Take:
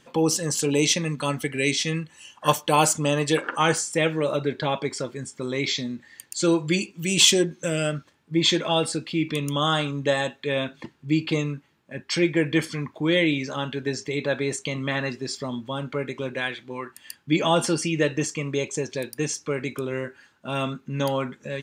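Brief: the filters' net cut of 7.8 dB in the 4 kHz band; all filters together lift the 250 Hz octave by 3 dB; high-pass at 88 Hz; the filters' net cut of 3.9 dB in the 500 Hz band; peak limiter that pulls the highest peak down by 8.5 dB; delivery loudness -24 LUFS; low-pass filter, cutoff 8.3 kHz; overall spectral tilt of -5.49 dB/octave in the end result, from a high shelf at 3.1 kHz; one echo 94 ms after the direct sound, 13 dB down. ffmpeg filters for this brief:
-af "highpass=88,lowpass=8300,equalizer=f=250:t=o:g=8,equalizer=f=500:t=o:g=-8,highshelf=f=3100:g=-6,equalizer=f=4000:t=o:g=-5.5,alimiter=limit=0.15:level=0:latency=1,aecho=1:1:94:0.224,volume=1.5"

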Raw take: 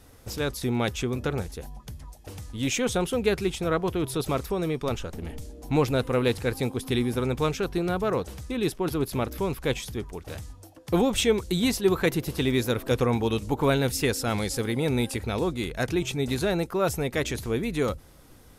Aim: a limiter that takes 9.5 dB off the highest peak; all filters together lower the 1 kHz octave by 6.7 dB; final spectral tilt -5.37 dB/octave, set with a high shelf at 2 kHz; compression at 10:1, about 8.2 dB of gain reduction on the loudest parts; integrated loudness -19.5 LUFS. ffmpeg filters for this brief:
-af "equalizer=f=1000:t=o:g=-8.5,highshelf=f=2000:g=-3.5,acompressor=threshold=0.0501:ratio=10,volume=6.68,alimiter=limit=0.355:level=0:latency=1"

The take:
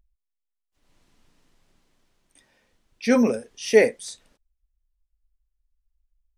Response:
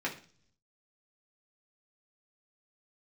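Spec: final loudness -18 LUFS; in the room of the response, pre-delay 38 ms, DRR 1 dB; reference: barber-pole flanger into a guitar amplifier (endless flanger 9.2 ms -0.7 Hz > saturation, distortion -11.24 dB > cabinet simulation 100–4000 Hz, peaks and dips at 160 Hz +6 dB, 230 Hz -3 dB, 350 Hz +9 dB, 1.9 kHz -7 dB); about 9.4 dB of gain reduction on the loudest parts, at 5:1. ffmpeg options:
-filter_complex "[0:a]acompressor=threshold=0.1:ratio=5,asplit=2[s0][s1];[1:a]atrim=start_sample=2205,adelay=38[s2];[s1][s2]afir=irnorm=-1:irlink=0,volume=0.447[s3];[s0][s3]amix=inputs=2:normalize=0,asplit=2[s4][s5];[s5]adelay=9.2,afreqshift=-0.7[s6];[s4][s6]amix=inputs=2:normalize=1,asoftclip=threshold=0.075,highpass=100,equalizer=f=160:t=q:w=4:g=6,equalizer=f=230:t=q:w=4:g=-3,equalizer=f=350:t=q:w=4:g=9,equalizer=f=1900:t=q:w=4:g=-7,lowpass=f=4000:w=0.5412,lowpass=f=4000:w=1.3066,volume=4.47"

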